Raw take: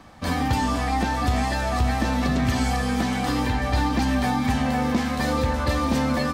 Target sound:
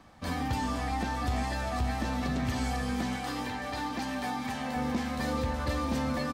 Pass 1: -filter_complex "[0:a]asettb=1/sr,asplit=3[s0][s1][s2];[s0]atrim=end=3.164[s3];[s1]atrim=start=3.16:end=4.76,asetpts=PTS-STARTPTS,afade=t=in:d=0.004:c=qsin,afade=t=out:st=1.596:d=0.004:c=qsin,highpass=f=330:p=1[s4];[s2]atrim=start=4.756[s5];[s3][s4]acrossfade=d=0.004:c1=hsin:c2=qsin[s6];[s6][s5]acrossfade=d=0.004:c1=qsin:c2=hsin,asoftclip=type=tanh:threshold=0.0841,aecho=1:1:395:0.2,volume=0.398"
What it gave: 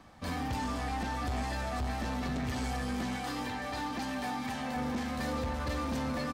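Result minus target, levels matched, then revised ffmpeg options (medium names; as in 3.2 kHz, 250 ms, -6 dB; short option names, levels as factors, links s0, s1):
saturation: distortion +17 dB
-filter_complex "[0:a]asettb=1/sr,asplit=3[s0][s1][s2];[s0]atrim=end=3.164[s3];[s1]atrim=start=3.16:end=4.76,asetpts=PTS-STARTPTS,afade=t=in:d=0.004:c=qsin,afade=t=out:st=1.596:d=0.004:c=qsin,highpass=f=330:p=1[s4];[s2]atrim=start=4.756[s5];[s3][s4]acrossfade=d=0.004:c1=hsin:c2=qsin[s6];[s6][s5]acrossfade=d=0.004:c1=qsin:c2=hsin,asoftclip=type=tanh:threshold=0.316,aecho=1:1:395:0.2,volume=0.398"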